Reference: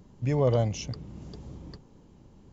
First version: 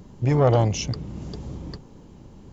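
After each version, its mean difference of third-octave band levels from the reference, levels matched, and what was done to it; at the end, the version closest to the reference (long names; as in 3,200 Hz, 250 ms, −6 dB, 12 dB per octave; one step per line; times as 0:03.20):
2.0 dB: saturating transformer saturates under 440 Hz
level +8.5 dB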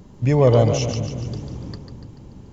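3.0 dB: echo with a time of its own for lows and highs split 300 Hz, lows 347 ms, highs 145 ms, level −7.5 dB
level +9 dB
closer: first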